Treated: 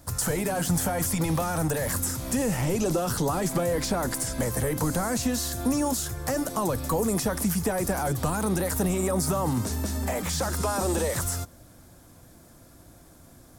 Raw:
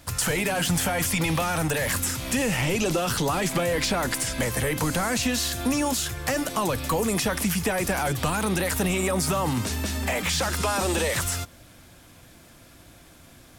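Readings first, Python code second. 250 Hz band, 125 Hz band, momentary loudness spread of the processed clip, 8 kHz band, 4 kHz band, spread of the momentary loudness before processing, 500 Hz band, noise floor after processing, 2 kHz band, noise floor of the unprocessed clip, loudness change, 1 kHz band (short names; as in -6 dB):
0.0 dB, 0.0 dB, 3 LU, -2.0 dB, -7.5 dB, 3 LU, -0.5 dB, -52 dBFS, -8.0 dB, -51 dBFS, -2.0 dB, -2.5 dB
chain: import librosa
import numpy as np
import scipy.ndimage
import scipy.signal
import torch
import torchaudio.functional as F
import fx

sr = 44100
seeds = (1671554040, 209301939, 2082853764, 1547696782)

y = fx.peak_eq(x, sr, hz=2700.0, db=-13.0, octaves=1.4)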